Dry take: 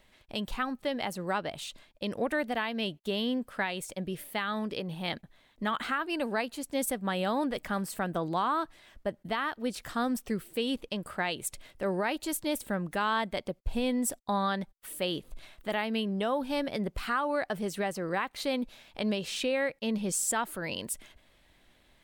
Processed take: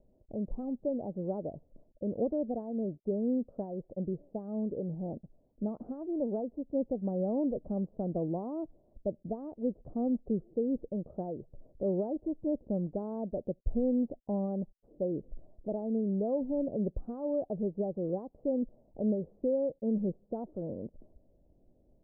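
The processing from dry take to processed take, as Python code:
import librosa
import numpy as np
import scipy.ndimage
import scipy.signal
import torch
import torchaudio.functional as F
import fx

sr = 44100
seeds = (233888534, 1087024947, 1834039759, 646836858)

y = scipy.signal.sosfilt(scipy.signal.butter(6, 620.0, 'lowpass', fs=sr, output='sos'), x)
y = y * 10.0 ** (1.0 / 20.0)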